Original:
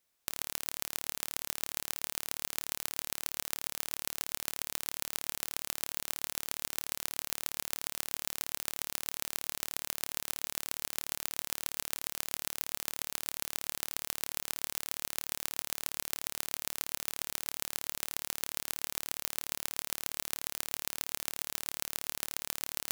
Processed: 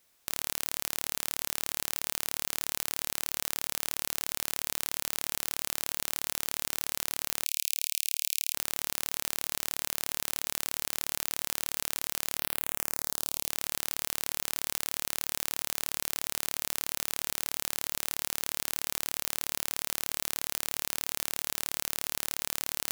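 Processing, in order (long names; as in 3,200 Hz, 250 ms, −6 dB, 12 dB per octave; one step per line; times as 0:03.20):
0:07.45–0:08.54: elliptic high-pass filter 2,400 Hz, stop band 40 dB
0:12.38–0:13.49: parametric band 8,100 Hz → 1,400 Hz −15 dB 0.57 octaves
boost into a limiter +13 dB
level −3 dB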